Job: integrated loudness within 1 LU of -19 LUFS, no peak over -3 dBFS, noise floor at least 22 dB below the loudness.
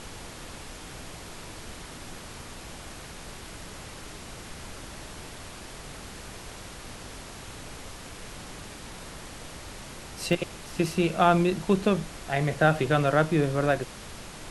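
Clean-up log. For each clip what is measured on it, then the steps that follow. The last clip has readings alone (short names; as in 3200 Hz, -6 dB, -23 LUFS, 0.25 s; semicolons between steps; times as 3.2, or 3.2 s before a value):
dropouts 1; longest dropout 1.4 ms; noise floor -43 dBFS; noise floor target -48 dBFS; loudness -25.5 LUFS; peak -7.0 dBFS; loudness target -19.0 LUFS
-> interpolate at 10.33, 1.4 ms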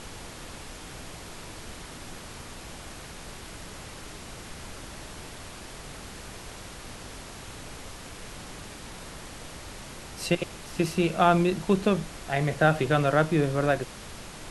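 dropouts 0; noise floor -43 dBFS; noise floor target -48 dBFS
-> noise print and reduce 6 dB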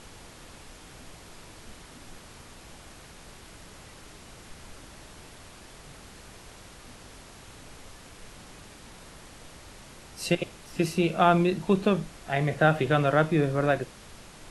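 noise floor -49 dBFS; loudness -25.5 LUFS; peak -7.0 dBFS; loudness target -19.0 LUFS
-> gain +6.5 dB; limiter -3 dBFS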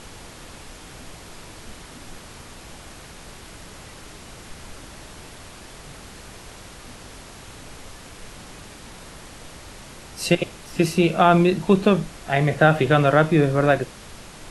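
loudness -19.5 LUFS; peak -3.0 dBFS; noise floor -43 dBFS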